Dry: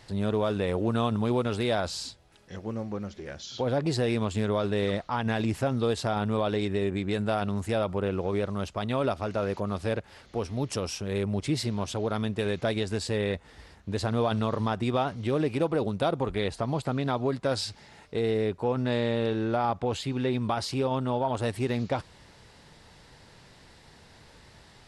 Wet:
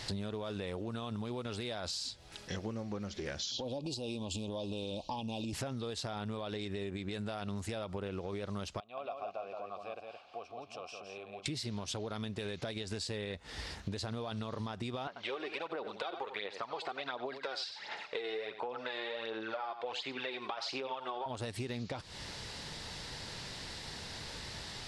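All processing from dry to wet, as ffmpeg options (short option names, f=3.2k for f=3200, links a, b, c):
-filter_complex "[0:a]asettb=1/sr,asplit=3[a][b][c];[a]atrim=end=3.514[d];[b]atrim=start=3.51:end=5.53,asetpts=PTS-STARTPTS,afade=t=in:d=0.004:c=qsin,afade=t=out:st=2.016:d=0.004:c=qsin,asuperstop=centerf=1600:order=12:qfactor=1.1,acompressor=threshold=-31dB:ratio=6:attack=3.2:release=140:knee=1:detection=peak,aecho=1:1:3.6:0.35,atrim=end_sample=89082[e];[c]atrim=start=5.526[f];[d][e]acrossfade=d=0.004:c1=hsin:c2=qsin[g];[g][f]acrossfade=d=0.004:c1=qsin:c2=hsin,asettb=1/sr,asplit=3[h][i][j];[h]atrim=end=8.804[k];[i]atrim=start=8.8:end=11.46,asetpts=PTS-STARTPTS,afade=t=in:d=0.004:c=qsin,afade=t=out:st=2.656:d=0.004:c=qsin,acompressor=threshold=-47dB:ratio=1.5:attack=3.2:release=140:knee=1:detection=peak,asplit=3[l][m][n];[l]bandpass=f=730:t=q:w=8,volume=0dB[o];[m]bandpass=f=1.09k:t=q:w=8,volume=-6dB[p];[n]bandpass=f=2.44k:t=q:w=8,volume=-9dB[q];[o][p][q]amix=inputs=3:normalize=0,aecho=1:1:170:0.562,atrim=end_sample=117306[r];[j]atrim=start=11.456[s];[k][r]acrossfade=d=0.004:c1=hsin:c2=qsin[t];[t][s]acrossfade=d=0.004:c1=qsin:c2=hsin,asettb=1/sr,asplit=3[u][v][w];[u]atrim=end=15.074[x];[v]atrim=start=15.07:end=21.26,asetpts=PTS-STARTPTS,afade=t=in:d=0.004:c=qsin,afade=t=out:st=6.186:d=0.004:c=qsin,aphaser=in_gain=1:out_gain=1:delay=2.8:decay=0.58:speed=1.4:type=sinusoidal,highpass=650,lowpass=3.2k,aecho=1:1:90:0.211,atrim=end_sample=272979[y];[w]atrim=start=21.256[z];[x][y]acrossfade=d=0.004:c1=hsin:c2=qsin[aa];[aa][z]acrossfade=d=0.004:c1=qsin:c2=hsin,equalizer=f=4.7k:t=o:w=1.9:g=8,alimiter=limit=-22.5dB:level=0:latency=1:release=168,acompressor=threshold=-42dB:ratio=10,volume=6dB"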